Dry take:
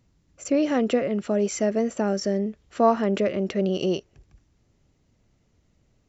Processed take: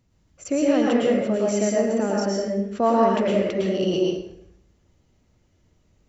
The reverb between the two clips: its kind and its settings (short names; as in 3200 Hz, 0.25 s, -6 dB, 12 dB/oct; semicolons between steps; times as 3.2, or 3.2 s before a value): plate-style reverb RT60 0.76 s, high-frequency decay 0.75×, pre-delay 95 ms, DRR -3 dB; gain -2 dB